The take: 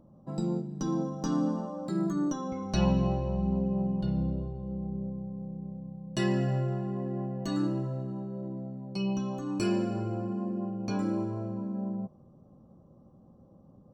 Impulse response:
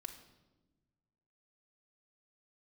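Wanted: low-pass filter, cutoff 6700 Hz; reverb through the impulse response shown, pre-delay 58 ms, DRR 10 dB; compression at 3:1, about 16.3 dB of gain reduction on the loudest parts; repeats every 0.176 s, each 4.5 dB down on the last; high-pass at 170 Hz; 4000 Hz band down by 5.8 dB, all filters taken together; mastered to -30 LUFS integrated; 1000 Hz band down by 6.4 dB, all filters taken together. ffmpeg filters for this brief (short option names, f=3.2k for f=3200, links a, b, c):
-filter_complex "[0:a]highpass=170,lowpass=6.7k,equalizer=f=1k:t=o:g=-8.5,equalizer=f=4k:t=o:g=-7,acompressor=threshold=-48dB:ratio=3,aecho=1:1:176|352|528|704|880|1056|1232|1408|1584:0.596|0.357|0.214|0.129|0.0772|0.0463|0.0278|0.0167|0.01,asplit=2[a][b];[1:a]atrim=start_sample=2205,adelay=58[c];[b][c]afir=irnorm=-1:irlink=0,volume=-6dB[d];[a][d]amix=inputs=2:normalize=0,volume=16dB"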